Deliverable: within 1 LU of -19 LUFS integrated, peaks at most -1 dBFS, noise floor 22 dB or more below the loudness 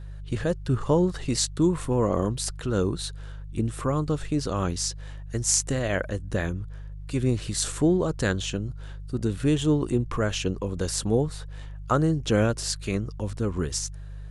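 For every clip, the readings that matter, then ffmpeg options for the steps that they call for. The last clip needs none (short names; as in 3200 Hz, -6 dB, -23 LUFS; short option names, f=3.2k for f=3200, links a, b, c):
hum 50 Hz; harmonics up to 150 Hz; hum level -36 dBFS; loudness -26.5 LUFS; peak -4.0 dBFS; loudness target -19.0 LUFS
-> -af "bandreject=f=50:t=h:w=4,bandreject=f=100:t=h:w=4,bandreject=f=150:t=h:w=4"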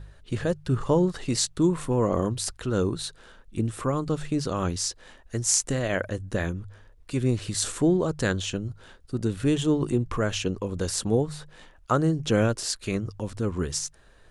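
hum none; loudness -27.0 LUFS; peak -4.0 dBFS; loudness target -19.0 LUFS
-> -af "volume=8dB,alimiter=limit=-1dB:level=0:latency=1"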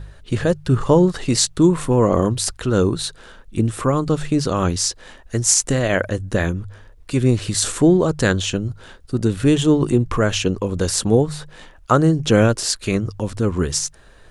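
loudness -19.0 LUFS; peak -1.0 dBFS; noise floor -46 dBFS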